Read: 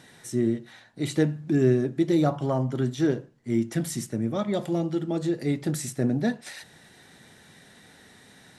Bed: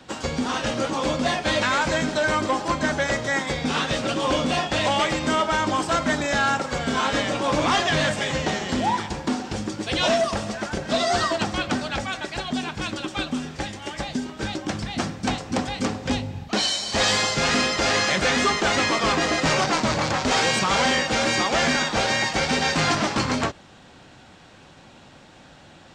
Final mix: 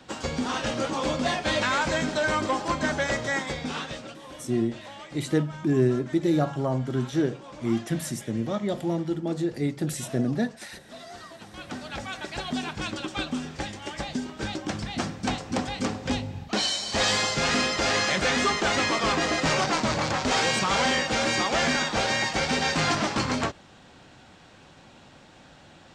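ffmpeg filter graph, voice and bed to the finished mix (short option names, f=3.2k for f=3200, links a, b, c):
-filter_complex "[0:a]adelay=4150,volume=-1dB[a];[1:a]volume=15.5dB,afade=t=out:st=3.27:d=0.93:silence=0.11885,afade=t=in:st=11.45:d=1.01:silence=0.11885[b];[a][b]amix=inputs=2:normalize=0"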